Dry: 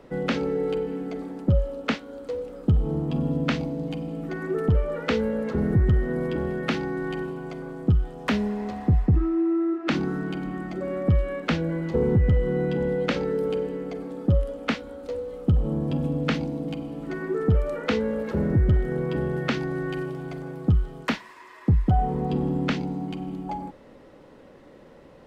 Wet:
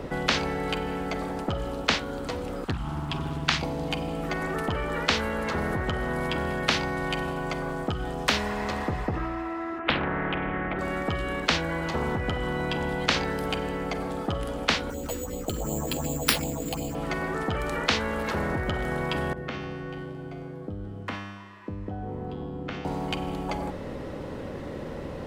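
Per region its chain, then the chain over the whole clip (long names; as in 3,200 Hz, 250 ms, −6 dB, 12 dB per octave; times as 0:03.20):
0:02.64–0:03.63: Chebyshev band-stop filter 130–1,200 Hz + parametric band 180 Hz +6 dB 2.3 octaves + highs frequency-modulated by the lows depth 0.68 ms
0:09.79–0:10.79: Butterworth low-pass 2,900 Hz + highs frequency-modulated by the lows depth 0.33 ms
0:14.90–0:16.95: all-pass phaser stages 4, 2.7 Hz, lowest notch 110–1,600 Hz + bad sample-rate conversion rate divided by 6×, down none, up hold
0:19.33–0:22.85: high-shelf EQ 4,300 Hz −10 dB + downward compressor, threshold −23 dBFS + tuned comb filter 100 Hz, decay 1.3 s, mix 90%
whole clip: parametric band 82 Hz +10 dB 2.1 octaves; mains-hum notches 60/120/180 Hz; every bin compressed towards the loudest bin 4 to 1; level −3 dB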